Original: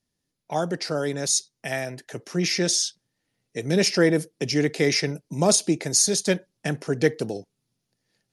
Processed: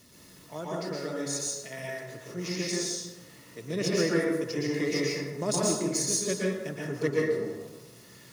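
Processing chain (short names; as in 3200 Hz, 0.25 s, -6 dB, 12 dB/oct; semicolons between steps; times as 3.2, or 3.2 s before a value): zero-crossing step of -29.5 dBFS; power-law curve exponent 1.4; notch comb 790 Hz; plate-style reverb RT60 1.1 s, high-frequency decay 0.5×, pre-delay 0.105 s, DRR -5 dB; gain -8 dB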